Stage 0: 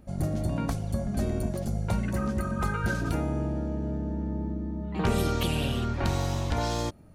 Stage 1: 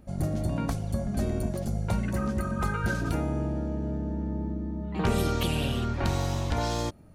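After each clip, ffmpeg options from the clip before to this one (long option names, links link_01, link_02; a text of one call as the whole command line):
ffmpeg -i in.wav -af anull out.wav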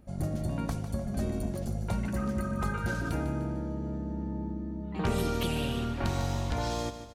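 ffmpeg -i in.wav -af "aecho=1:1:150|300|450|600|750:0.282|0.127|0.0571|0.0257|0.0116,volume=-3.5dB" out.wav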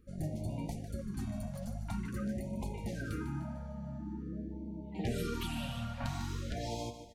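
ffmpeg -i in.wav -af "flanger=delay=2:depth=8.2:regen=51:speed=1.1:shape=triangular,afftfilt=real='re*(1-between(b*sr/1024,340*pow(1500/340,0.5+0.5*sin(2*PI*0.47*pts/sr))/1.41,340*pow(1500/340,0.5+0.5*sin(2*PI*0.47*pts/sr))*1.41))':imag='im*(1-between(b*sr/1024,340*pow(1500/340,0.5+0.5*sin(2*PI*0.47*pts/sr))/1.41,340*pow(1500/340,0.5+0.5*sin(2*PI*0.47*pts/sr))*1.41))':win_size=1024:overlap=0.75,volume=-2dB" out.wav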